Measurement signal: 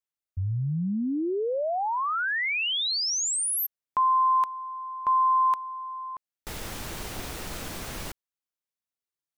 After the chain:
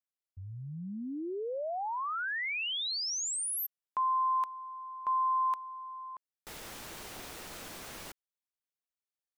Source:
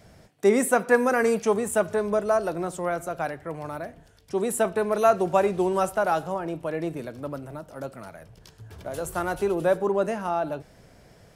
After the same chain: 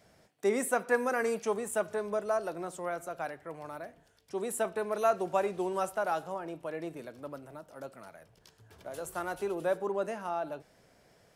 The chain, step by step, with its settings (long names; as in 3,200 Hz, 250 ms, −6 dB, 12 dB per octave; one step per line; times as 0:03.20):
low-shelf EQ 170 Hz −11.5 dB
level −7 dB